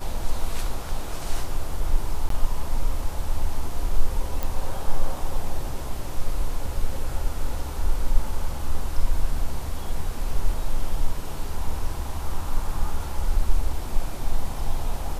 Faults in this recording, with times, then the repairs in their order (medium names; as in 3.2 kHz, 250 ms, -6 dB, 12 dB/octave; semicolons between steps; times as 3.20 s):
2.29–2.30 s: dropout 13 ms
4.43 s: pop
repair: de-click; interpolate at 2.29 s, 13 ms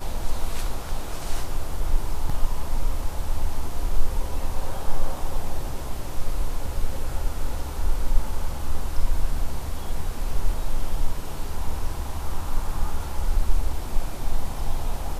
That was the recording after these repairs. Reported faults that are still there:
nothing left